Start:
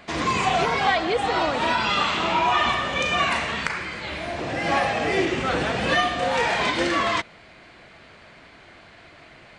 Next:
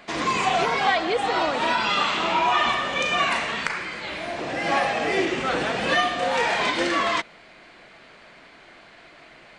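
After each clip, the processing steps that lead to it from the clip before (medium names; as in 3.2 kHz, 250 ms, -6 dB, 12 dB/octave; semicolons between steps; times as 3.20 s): peaking EQ 83 Hz -12.5 dB 1.4 oct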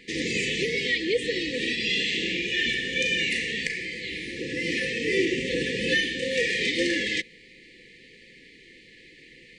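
FFT band-reject 530–1700 Hz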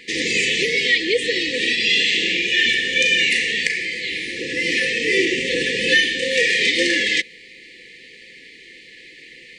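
bass shelf 350 Hz -11.5 dB; trim +9 dB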